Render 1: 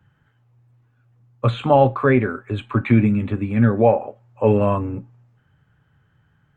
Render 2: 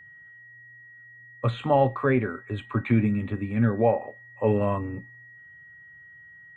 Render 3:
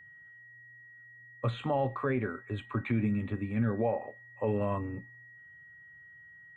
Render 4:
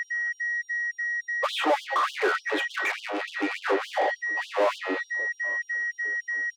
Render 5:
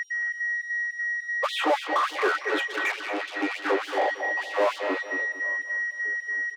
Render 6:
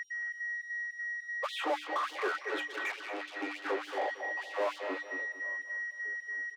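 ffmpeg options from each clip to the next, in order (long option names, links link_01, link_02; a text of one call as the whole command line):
ffmpeg -i in.wav -af "aeval=exprs='val(0)+0.01*sin(2*PI*1900*n/s)':channel_layout=same,volume=-6.5dB" out.wav
ffmpeg -i in.wav -af "alimiter=limit=-16dB:level=0:latency=1:release=62,volume=-4.5dB" out.wav
ffmpeg -i in.wav -filter_complex "[0:a]asplit=2[link_01][link_02];[link_02]highpass=frequency=720:poles=1,volume=33dB,asoftclip=type=tanh:threshold=-20dB[link_03];[link_01][link_03]amix=inputs=2:normalize=0,lowpass=frequency=1300:poles=1,volume=-6dB,asplit=2[link_04][link_05];[link_05]adelay=777,lowpass=frequency=840:poles=1,volume=-18.5dB,asplit=2[link_06][link_07];[link_07]adelay=777,lowpass=frequency=840:poles=1,volume=0.46,asplit=2[link_08][link_09];[link_09]adelay=777,lowpass=frequency=840:poles=1,volume=0.46,asplit=2[link_10][link_11];[link_11]adelay=777,lowpass=frequency=840:poles=1,volume=0.46[link_12];[link_04][link_06][link_08][link_10][link_12]amix=inputs=5:normalize=0,afftfilt=real='re*gte(b*sr/1024,270*pow(2900/270,0.5+0.5*sin(2*PI*3.4*pts/sr)))':imag='im*gte(b*sr/1024,270*pow(2900/270,0.5+0.5*sin(2*PI*3.4*pts/sr)))':win_size=1024:overlap=0.75,volume=6.5dB" out.wav
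ffmpeg -i in.wav -filter_complex "[0:a]asplit=2[link_01][link_02];[link_02]adelay=228,lowpass=frequency=3600:poles=1,volume=-8dB,asplit=2[link_03][link_04];[link_04]adelay=228,lowpass=frequency=3600:poles=1,volume=0.3,asplit=2[link_05][link_06];[link_06]adelay=228,lowpass=frequency=3600:poles=1,volume=0.3,asplit=2[link_07][link_08];[link_08]adelay=228,lowpass=frequency=3600:poles=1,volume=0.3[link_09];[link_01][link_03][link_05][link_07][link_09]amix=inputs=5:normalize=0" out.wav
ffmpeg -i in.wav -af "bandreject=frequency=60:width_type=h:width=6,bandreject=frequency=120:width_type=h:width=6,bandreject=frequency=180:width_type=h:width=6,bandreject=frequency=240:width_type=h:width=6,bandreject=frequency=300:width_type=h:width=6,volume=-9dB" out.wav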